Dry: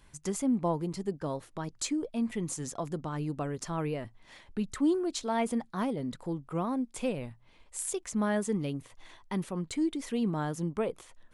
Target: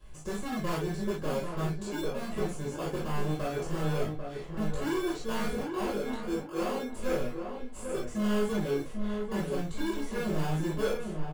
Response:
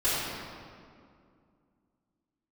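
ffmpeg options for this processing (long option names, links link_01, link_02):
-filter_complex "[0:a]asettb=1/sr,asplit=3[link_01][link_02][link_03];[link_01]atrim=end=5.564[link_04];[link_02]atrim=start=5.56:end=6.87,asetpts=PTS-STARTPTS,afade=type=in:duration=0.004:curve=qsin,afade=type=out:start_time=1.306:duration=0.004:curve=qsin,highpass=310[link_05];[link_03]atrim=start=6.866[link_06];[link_04][link_05]acrossfade=duration=0.004:curve1=hsin:curve2=qsin[link_07];[link_07][link_06]acrossfade=duration=0.004:curve1=qsin:curve2=hsin,acrossover=split=1200[link_08][link_09];[link_09]acompressor=threshold=-49dB:ratio=6[link_10];[link_08][link_10]amix=inputs=2:normalize=0,flanger=delay=6.2:depth=5.4:regen=74:speed=1.9:shape=sinusoidal,asplit=2[link_11][link_12];[link_12]acrusher=samples=23:mix=1:aa=0.000001,volume=-2dB[link_13];[link_11][link_13]amix=inputs=2:normalize=0,flanger=delay=18:depth=3.1:speed=0.21,volume=36dB,asoftclip=hard,volume=-36dB,asplit=2[link_14][link_15];[link_15]adelay=794,lowpass=frequency=1400:poles=1,volume=-5.5dB,asplit=2[link_16][link_17];[link_17]adelay=794,lowpass=frequency=1400:poles=1,volume=0.34,asplit=2[link_18][link_19];[link_19]adelay=794,lowpass=frequency=1400:poles=1,volume=0.34,asplit=2[link_20][link_21];[link_21]adelay=794,lowpass=frequency=1400:poles=1,volume=0.34[link_22];[link_14][link_16][link_18][link_20][link_22]amix=inputs=5:normalize=0[link_23];[1:a]atrim=start_sample=2205,atrim=end_sample=3087[link_24];[link_23][link_24]afir=irnorm=-1:irlink=0"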